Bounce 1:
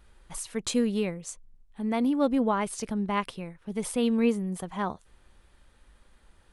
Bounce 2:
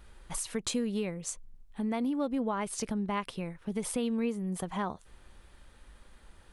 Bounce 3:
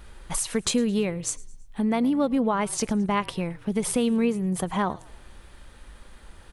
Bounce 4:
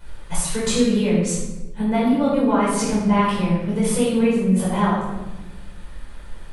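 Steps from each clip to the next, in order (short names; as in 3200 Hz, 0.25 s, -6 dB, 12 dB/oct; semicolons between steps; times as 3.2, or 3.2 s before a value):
compressor 3:1, threshold -35 dBFS, peak gain reduction 12 dB; gain +3.5 dB
frequency-shifting echo 0.109 s, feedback 46%, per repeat -44 Hz, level -22.5 dB; gain +8 dB
reverb RT60 1.1 s, pre-delay 9 ms, DRR -8.5 dB; gain -6 dB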